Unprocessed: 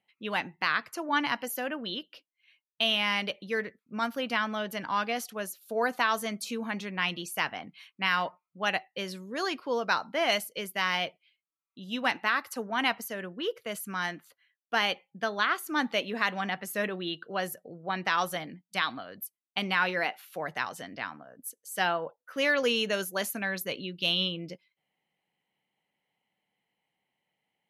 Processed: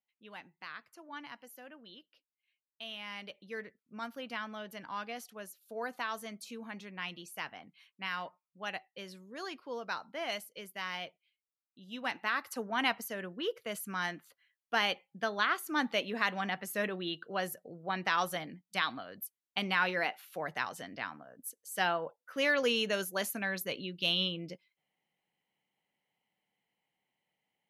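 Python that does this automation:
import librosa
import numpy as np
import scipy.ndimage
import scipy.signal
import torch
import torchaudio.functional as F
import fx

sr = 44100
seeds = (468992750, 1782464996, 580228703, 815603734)

y = fx.gain(x, sr, db=fx.line((2.83, -18.0), (3.59, -10.5), (11.86, -10.5), (12.54, -3.0)))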